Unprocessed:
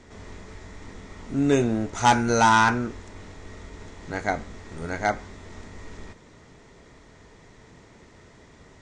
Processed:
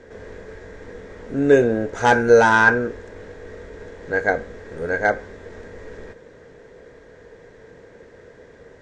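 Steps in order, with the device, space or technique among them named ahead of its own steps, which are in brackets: inside a helmet (treble shelf 5 kHz -7 dB; small resonant body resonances 490/1600 Hz, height 17 dB, ringing for 30 ms); trim -1 dB

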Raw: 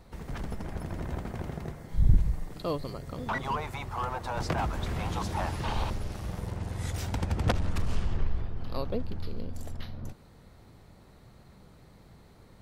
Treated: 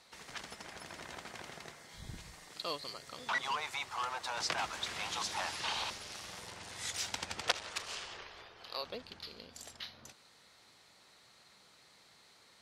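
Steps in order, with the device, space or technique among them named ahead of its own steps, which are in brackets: 7.41–8.84 s: resonant low shelf 320 Hz -7 dB, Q 1.5; piezo pickup straight into a mixer (low-pass 5.3 kHz 12 dB/octave; differentiator); trim +12.5 dB

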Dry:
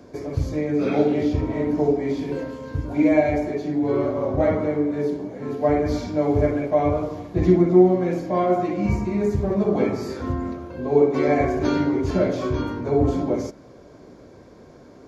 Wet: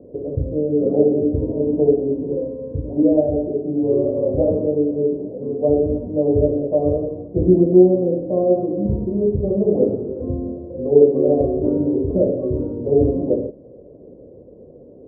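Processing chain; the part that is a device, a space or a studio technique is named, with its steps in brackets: under water (low-pass 540 Hz 24 dB/octave; peaking EQ 510 Hz +9.5 dB 0.56 oct); trim +1 dB

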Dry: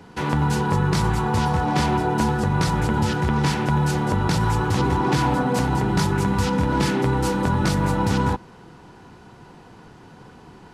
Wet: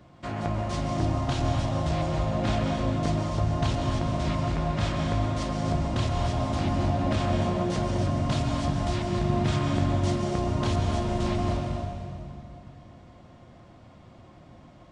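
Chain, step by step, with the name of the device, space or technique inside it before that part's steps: slowed and reverbed (tape speed -28%; reverberation RT60 2.4 s, pre-delay 119 ms, DRR 2 dB); trim -7.5 dB

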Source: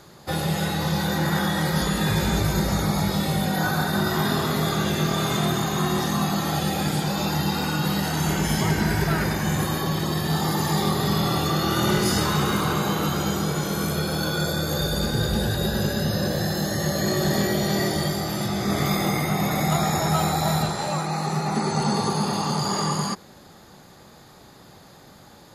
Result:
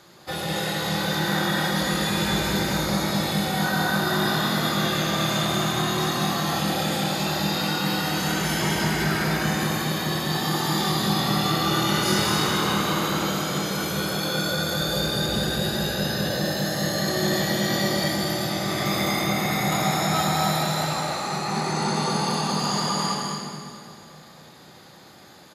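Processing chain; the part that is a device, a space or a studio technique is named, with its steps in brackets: stadium PA (high-pass 150 Hz 6 dB/octave; peaking EQ 2.9 kHz +4.5 dB 2 oct; loudspeakers at several distances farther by 70 m -5 dB, 90 m -9 dB; reverberation RT60 2.6 s, pre-delay 3 ms, DRR 1.5 dB); trim -4.5 dB

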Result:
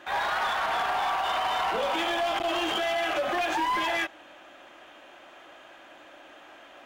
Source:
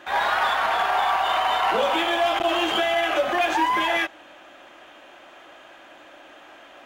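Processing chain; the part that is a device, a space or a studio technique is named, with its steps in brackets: limiter into clipper (peak limiter -15 dBFS, peak gain reduction 5 dB; hard clipper -20 dBFS, distortion -16 dB); trim -3 dB

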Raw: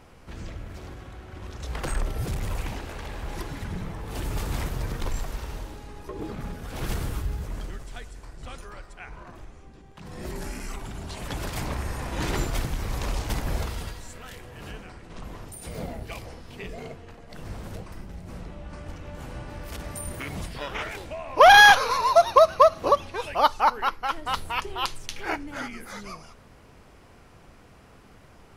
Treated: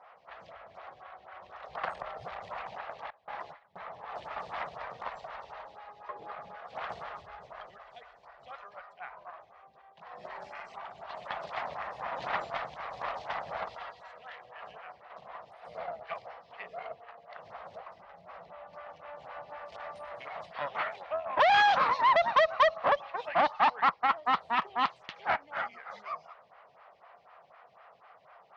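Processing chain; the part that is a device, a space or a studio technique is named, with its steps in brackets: 3.10–3.87 s: gate with hold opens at -24 dBFS; resonant low shelf 450 Hz -14 dB, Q 3; vibe pedal into a guitar amplifier (lamp-driven phase shifter 4 Hz; valve stage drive 22 dB, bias 0.65; cabinet simulation 92–4100 Hz, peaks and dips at 92 Hz -5 dB, 170 Hz +3 dB, 1.2 kHz +7 dB, 1.9 kHz +4 dB)

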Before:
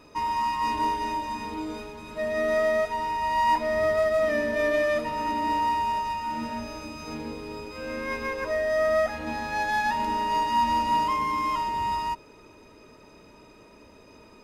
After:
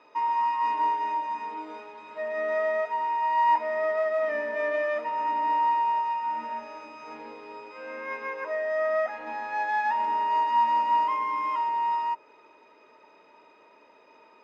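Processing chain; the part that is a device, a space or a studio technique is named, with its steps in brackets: dynamic bell 3.8 kHz, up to -6 dB, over -51 dBFS, Q 1.7; tin-can telephone (band-pass 510–3100 Hz; small resonant body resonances 900/2000 Hz, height 7 dB, ringing for 45 ms); trim -1.5 dB

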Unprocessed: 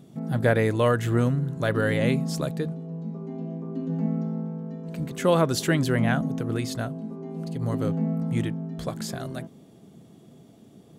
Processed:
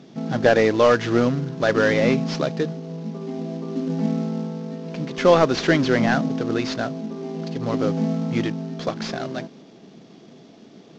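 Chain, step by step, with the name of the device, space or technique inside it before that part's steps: early wireless headset (high-pass 220 Hz 12 dB/octave; CVSD coder 32 kbps); trim +7.5 dB

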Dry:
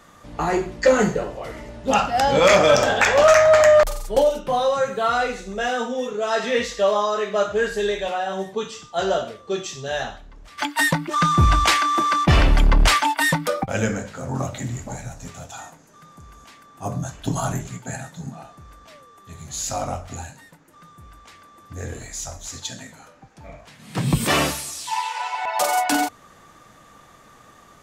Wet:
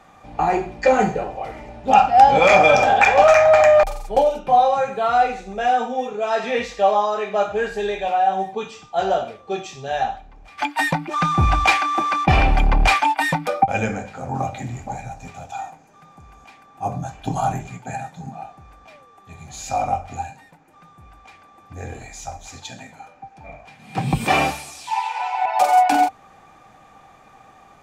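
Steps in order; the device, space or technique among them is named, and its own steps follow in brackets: inside a helmet (treble shelf 5.3 kHz -9 dB; small resonant body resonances 780/2400 Hz, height 17 dB, ringing for 55 ms); trim -1.5 dB

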